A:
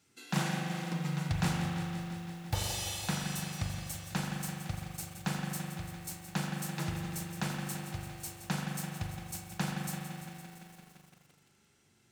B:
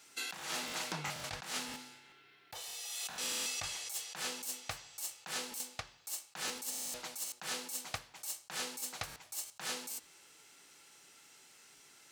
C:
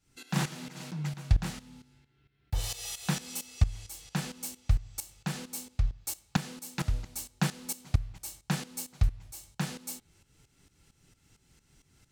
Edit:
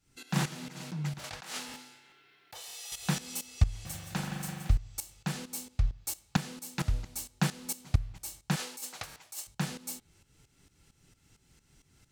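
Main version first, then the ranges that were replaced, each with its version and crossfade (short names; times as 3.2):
C
1.19–2.92 from B
3.85–4.7 from A
8.56–9.47 from B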